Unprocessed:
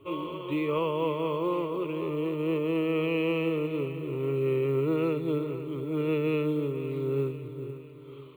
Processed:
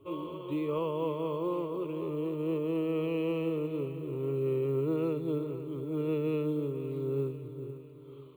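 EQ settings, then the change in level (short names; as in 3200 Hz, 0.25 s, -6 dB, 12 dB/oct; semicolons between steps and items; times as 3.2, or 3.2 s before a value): bell 2100 Hz -9.5 dB 1.3 oct; -3.0 dB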